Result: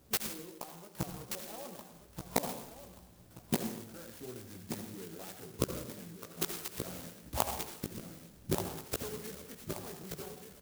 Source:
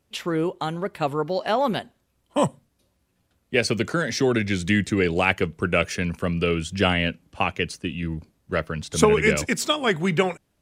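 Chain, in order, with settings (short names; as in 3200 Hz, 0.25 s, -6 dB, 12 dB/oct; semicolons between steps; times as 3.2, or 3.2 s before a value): 6.2–6.84 HPF 1200 Hz 6 dB/oct; in parallel at -2.5 dB: limiter -14 dBFS, peak gain reduction 11 dB; on the sum: flipped gate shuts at -18 dBFS, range -33 dB; chorus 3 Hz, delay 15.5 ms, depth 3.2 ms; feedback echo 1.18 s, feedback 36%, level -8 dB; on a send at -5.5 dB: reverb RT60 0.80 s, pre-delay 63 ms; on the sum: clock jitter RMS 0.14 ms; gain +6 dB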